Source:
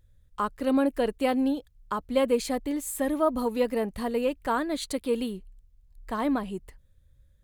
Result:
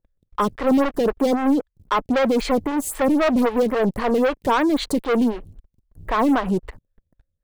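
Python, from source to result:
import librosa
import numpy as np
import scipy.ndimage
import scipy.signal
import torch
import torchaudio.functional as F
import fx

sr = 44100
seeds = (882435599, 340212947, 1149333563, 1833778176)

y = fx.high_shelf(x, sr, hz=3500.0, db=-11.5)
y = fx.leveller(y, sr, passes=5)
y = fx.stagger_phaser(y, sr, hz=3.8)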